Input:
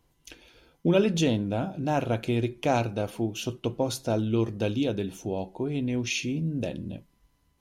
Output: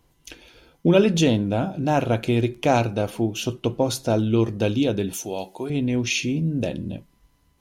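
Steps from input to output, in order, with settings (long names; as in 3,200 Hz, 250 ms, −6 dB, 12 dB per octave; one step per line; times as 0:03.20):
0:02.33–0:02.77: surface crackle 13 per second −42 dBFS
0:05.13–0:05.70: spectral tilt +3.5 dB per octave
level +5.5 dB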